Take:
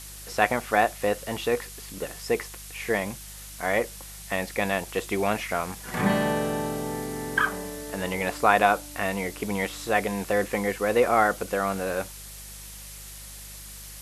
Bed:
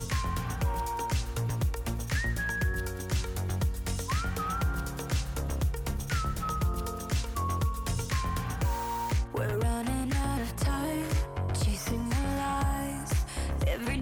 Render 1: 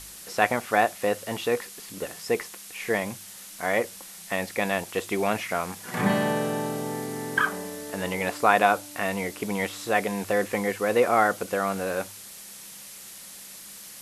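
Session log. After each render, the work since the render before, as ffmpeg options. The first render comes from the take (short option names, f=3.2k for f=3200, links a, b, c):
-af "bandreject=f=50:t=h:w=4,bandreject=f=100:t=h:w=4,bandreject=f=150:t=h:w=4"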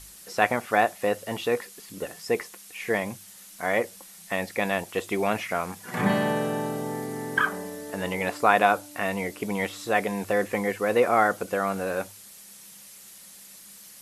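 -af "afftdn=nr=6:nf=-44"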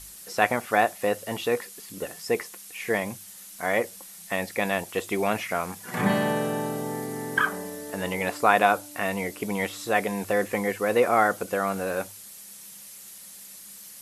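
-af "highshelf=f=7.9k:g=5"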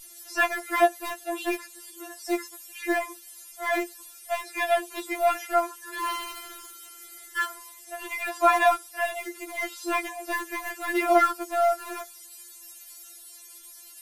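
-filter_complex "[0:a]asplit=2[a][b];[b]aeval=exprs='val(0)*gte(abs(val(0)),0.0944)':c=same,volume=-9dB[c];[a][c]amix=inputs=2:normalize=0,afftfilt=real='re*4*eq(mod(b,16),0)':imag='im*4*eq(mod(b,16),0)':win_size=2048:overlap=0.75"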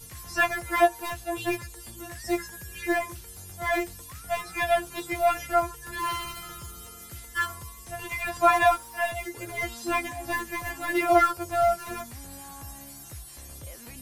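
-filter_complex "[1:a]volume=-15dB[a];[0:a][a]amix=inputs=2:normalize=0"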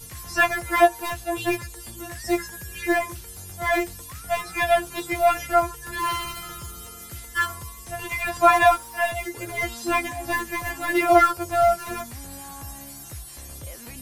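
-af "volume=4dB"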